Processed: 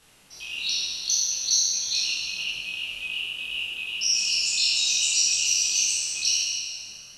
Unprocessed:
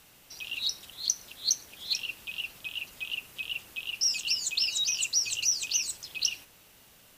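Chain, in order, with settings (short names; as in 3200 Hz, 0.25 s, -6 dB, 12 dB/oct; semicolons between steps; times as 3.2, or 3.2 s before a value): spectral trails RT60 1.98 s; chorus voices 4, 1.5 Hz, delay 23 ms, depth 3 ms; brick-wall FIR low-pass 12000 Hz; gain +1.5 dB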